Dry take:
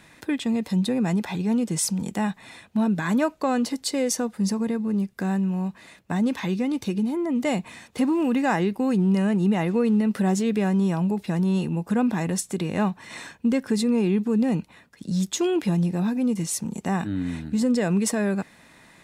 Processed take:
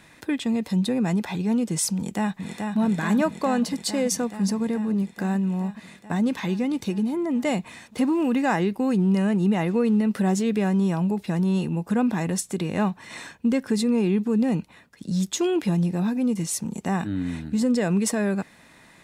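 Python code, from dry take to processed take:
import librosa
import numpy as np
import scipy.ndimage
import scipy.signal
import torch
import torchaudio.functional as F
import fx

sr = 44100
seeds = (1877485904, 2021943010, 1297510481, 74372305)

y = fx.echo_throw(x, sr, start_s=1.96, length_s=0.82, ms=430, feedback_pct=80, wet_db=-4.5)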